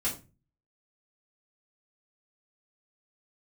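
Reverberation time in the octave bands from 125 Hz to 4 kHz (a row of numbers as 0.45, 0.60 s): 0.60, 0.45, 0.35, 0.30, 0.25, 0.25 s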